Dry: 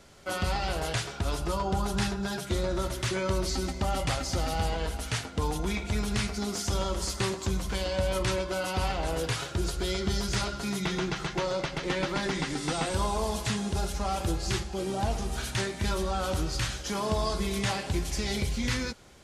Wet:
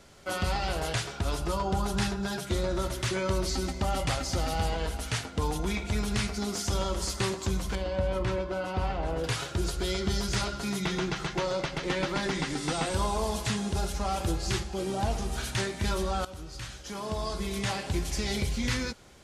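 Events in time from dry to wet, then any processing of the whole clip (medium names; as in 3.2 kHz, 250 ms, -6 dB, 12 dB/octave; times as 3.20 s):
7.75–9.24 s: low-pass 1.4 kHz 6 dB/octave
16.25–18.06 s: fade in, from -15.5 dB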